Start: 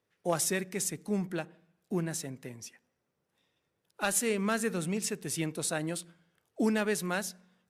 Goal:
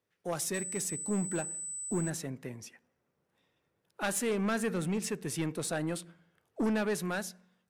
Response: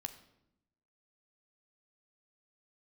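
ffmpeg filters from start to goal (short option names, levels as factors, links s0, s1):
-filter_complex "[0:a]acrossover=split=2600[s0][s1];[s0]dynaudnorm=f=170:g=9:m=2[s2];[s2][s1]amix=inputs=2:normalize=0,asettb=1/sr,asplit=3[s3][s4][s5];[s3]atrim=end=0.544[s6];[s4]atrim=start=0.54:end=2.1,asetpts=PTS-STARTPTS,afade=t=in:d=0.004:c=qsin,afade=t=out:st=1.556:d=0.004:c=qsin,aeval=exprs='val(0)+0.0224*sin(2*PI*8000*n/s)':c=same[s7];[s5]atrim=start=2.096[s8];[s6][s7]acrossfade=d=0.004:c1=hsin:c2=qsin[s9];[s9][s8]acrossfade=d=0.004:c1=qsin:c2=hsin,asoftclip=type=tanh:threshold=0.0841,volume=0.668"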